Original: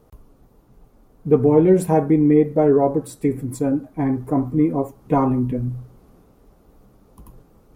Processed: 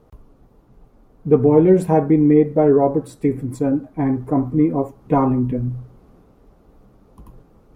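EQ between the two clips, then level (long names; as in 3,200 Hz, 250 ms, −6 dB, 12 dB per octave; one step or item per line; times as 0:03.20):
high-shelf EQ 6,100 Hz −11 dB
+1.5 dB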